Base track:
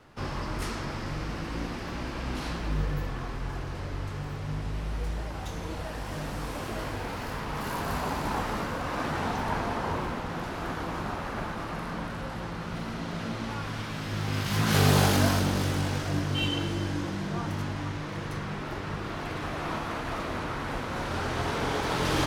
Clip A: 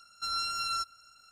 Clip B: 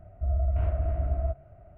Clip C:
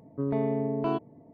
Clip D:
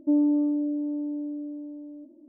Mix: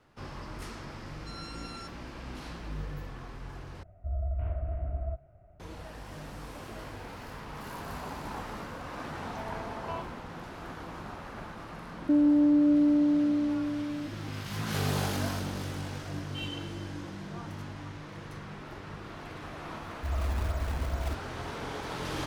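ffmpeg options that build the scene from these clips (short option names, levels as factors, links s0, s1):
-filter_complex "[2:a]asplit=2[s0][s1];[0:a]volume=0.376[s2];[1:a]aresample=22050,aresample=44100[s3];[3:a]highpass=f=750:w=0.5412,highpass=f=750:w=1.3066[s4];[4:a]alimiter=level_in=15:limit=0.891:release=50:level=0:latency=1[s5];[s1]acrusher=samples=30:mix=1:aa=0.000001:lfo=1:lforange=48:lforate=2.4[s6];[s2]asplit=2[s7][s8];[s7]atrim=end=3.834[s9];[s0]atrim=end=1.77,asetpts=PTS-STARTPTS,volume=0.501[s10];[s8]atrim=start=5.596[s11];[s3]atrim=end=1.31,asetpts=PTS-STARTPTS,volume=0.211,afade=t=in:d=0.004:c=hsin,afade=t=out:st=1.306:d=0.004:c=hsin,adelay=1040[s12];[s4]atrim=end=1.33,asetpts=PTS-STARTPTS,volume=0.668,afade=t=in:d=0.004:c=hsin,afade=t=out:st=1.326:d=0.004:c=hsin,adelay=9040[s13];[s5]atrim=end=2.28,asetpts=PTS-STARTPTS,volume=0.141,afade=t=in:d=0.004:c=hsin,afade=t=out:st=2.276:d=0.004:c=hsin,adelay=12020[s14];[s6]atrim=end=1.77,asetpts=PTS-STARTPTS,volume=0.562,afade=t=in:d=0.004:c=hsin,afade=t=out:st=1.766:d=0.004:c=hsin,adelay=19820[s15];[s9][s10]acrossfade=d=0.004:c1=hsin:c2=hsin[s16];[s16][s11]acrossfade=d=0.004:c1=hsin:c2=hsin[s17];[s17][s12][s13][s14][s15]amix=inputs=5:normalize=0"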